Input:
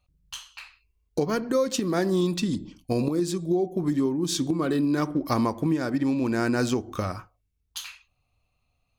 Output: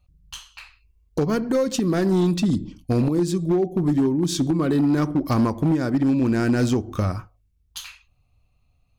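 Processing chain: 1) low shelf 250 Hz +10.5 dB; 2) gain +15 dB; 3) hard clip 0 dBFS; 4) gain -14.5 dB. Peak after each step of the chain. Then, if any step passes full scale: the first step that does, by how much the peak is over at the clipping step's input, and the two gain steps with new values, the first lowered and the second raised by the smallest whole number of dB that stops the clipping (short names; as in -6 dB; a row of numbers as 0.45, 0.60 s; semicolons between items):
-7.0, +8.0, 0.0, -14.5 dBFS; step 2, 8.0 dB; step 2 +7 dB, step 4 -6.5 dB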